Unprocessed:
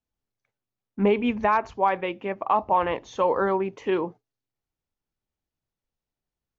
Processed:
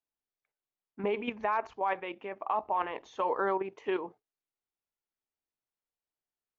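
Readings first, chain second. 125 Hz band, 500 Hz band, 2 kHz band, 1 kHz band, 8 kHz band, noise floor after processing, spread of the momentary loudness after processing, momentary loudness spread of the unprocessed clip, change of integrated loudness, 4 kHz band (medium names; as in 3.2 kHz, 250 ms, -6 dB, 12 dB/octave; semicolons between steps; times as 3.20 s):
under -15 dB, -8.5 dB, -6.5 dB, -8.0 dB, no reading, under -85 dBFS, 7 LU, 7 LU, -8.5 dB, -7.5 dB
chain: tone controls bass -14 dB, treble -6 dB; band-stop 530 Hz, Q 12; level held to a coarse grid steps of 9 dB; trim -1.5 dB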